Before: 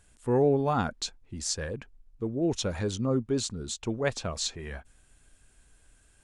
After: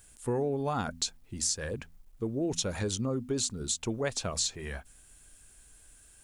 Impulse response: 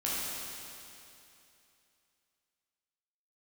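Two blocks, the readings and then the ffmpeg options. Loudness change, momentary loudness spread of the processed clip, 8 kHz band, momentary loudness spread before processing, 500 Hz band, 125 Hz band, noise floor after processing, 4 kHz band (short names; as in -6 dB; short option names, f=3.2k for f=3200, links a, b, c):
-2.5 dB, 8 LU, +3.5 dB, 13 LU, -5.0 dB, -3.5 dB, -58 dBFS, +0.5 dB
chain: -af "aemphasis=mode=production:type=50kf,bandreject=f=83.04:t=h:w=4,bandreject=f=166.08:t=h:w=4,bandreject=f=249.12:t=h:w=4,acompressor=threshold=-27dB:ratio=6,acrusher=bits=11:mix=0:aa=0.000001"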